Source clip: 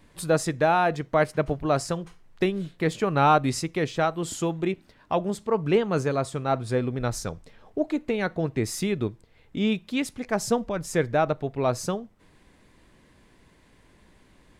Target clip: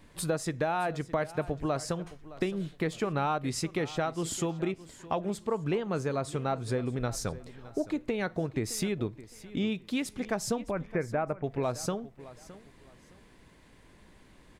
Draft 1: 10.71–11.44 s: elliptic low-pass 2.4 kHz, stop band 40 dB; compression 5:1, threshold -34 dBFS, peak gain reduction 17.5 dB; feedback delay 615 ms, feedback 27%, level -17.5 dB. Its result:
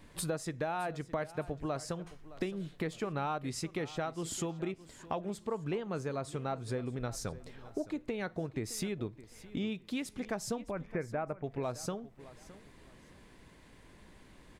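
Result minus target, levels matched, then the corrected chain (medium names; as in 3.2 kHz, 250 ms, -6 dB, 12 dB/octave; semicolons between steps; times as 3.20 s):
compression: peak gain reduction +5.5 dB
10.71–11.44 s: elliptic low-pass 2.4 kHz, stop band 40 dB; compression 5:1, threshold -27 dBFS, peak gain reduction 12 dB; feedback delay 615 ms, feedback 27%, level -17.5 dB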